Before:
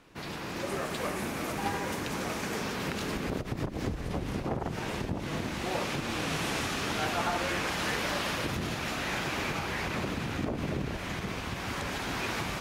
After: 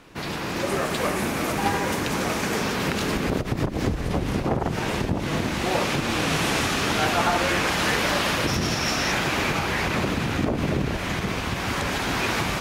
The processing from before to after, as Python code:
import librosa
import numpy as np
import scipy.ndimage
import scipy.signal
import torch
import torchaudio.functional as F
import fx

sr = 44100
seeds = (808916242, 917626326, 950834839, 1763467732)

y = fx.peak_eq(x, sr, hz=5500.0, db=13.5, octaves=0.22, at=(8.47, 9.12))
y = y * 10.0 ** (8.5 / 20.0)